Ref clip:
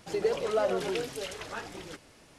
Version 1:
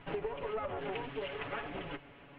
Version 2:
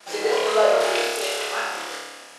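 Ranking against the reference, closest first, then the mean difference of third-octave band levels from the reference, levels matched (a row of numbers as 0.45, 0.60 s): 2, 1; 7.5, 10.0 dB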